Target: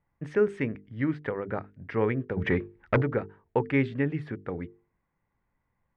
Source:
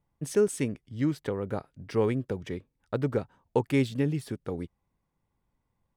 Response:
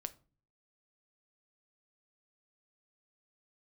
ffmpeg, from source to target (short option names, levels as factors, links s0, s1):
-filter_complex "[0:a]bandreject=f=50:t=h:w=6,bandreject=f=100:t=h:w=6,bandreject=f=150:t=h:w=6,bandreject=f=200:t=h:w=6,bandreject=f=250:t=h:w=6,bandreject=f=300:t=h:w=6,bandreject=f=350:t=h:w=6,bandreject=f=400:t=h:w=6,bandreject=f=450:t=h:w=6,asplit=3[s0][s1][s2];[s0]afade=t=out:st=2.36:d=0.02[s3];[s1]aeval=exprs='0.141*sin(PI/2*2.24*val(0)/0.141)':c=same,afade=t=in:st=2.36:d=0.02,afade=t=out:st=3.01:d=0.02[s4];[s2]afade=t=in:st=3.01:d=0.02[s5];[s3][s4][s5]amix=inputs=3:normalize=0,lowpass=f=1900:t=q:w=2.5"